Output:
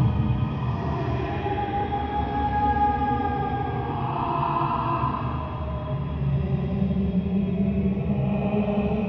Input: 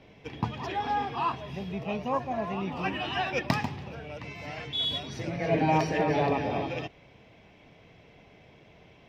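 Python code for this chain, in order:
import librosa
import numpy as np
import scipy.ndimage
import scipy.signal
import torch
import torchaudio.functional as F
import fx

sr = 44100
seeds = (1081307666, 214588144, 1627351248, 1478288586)

y = fx.riaa(x, sr, side='playback')
y = fx.env_lowpass(y, sr, base_hz=2300.0, full_db=-17.0)
y = fx.rev_schroeder(y, sr, rt60_s=0.91, comb_ms=29, drr_db=9.0)
y = fx.paulstretch(y, sr, seeds[0], factor=6.1, window_s=0.25, from_s=0.49)
y = y * librosa.db_to_amplitude(2.5)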